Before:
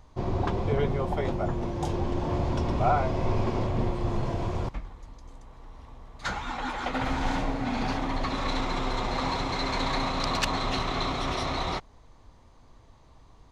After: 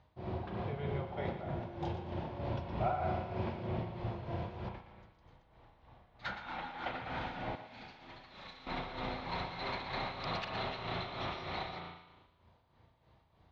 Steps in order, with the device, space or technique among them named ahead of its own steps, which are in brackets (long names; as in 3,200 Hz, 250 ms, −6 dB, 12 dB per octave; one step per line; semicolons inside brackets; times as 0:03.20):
combo amplifier with spring reverb and tremolo (spring reverb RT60 1.1 s, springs 35 ms, chirp 60 ms, DRR 4 dB; amplitude tremolo 3.2 Hz, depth 64%; loudspeaker in its box 86–4,100 Hz, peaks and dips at 270 Hz −8 dB, 430 Hz −4 dB, 1,100 Hz −6 dB)
0:07.55–0:08.67: first-order pre-emphasis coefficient 0.8
feedback echo with a high-pass in the loop 118 ms, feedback 45%, level −10 dB
level −6.5 dB